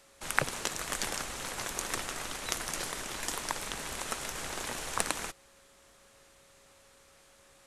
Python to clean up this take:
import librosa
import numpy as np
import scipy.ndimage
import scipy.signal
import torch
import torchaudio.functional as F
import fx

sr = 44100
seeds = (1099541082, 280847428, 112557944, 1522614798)

y = fx.fix_declip(x, sr, threshold_db=-4.5)
y = fx.notch(y, sr, hz=550.0, q=30.0)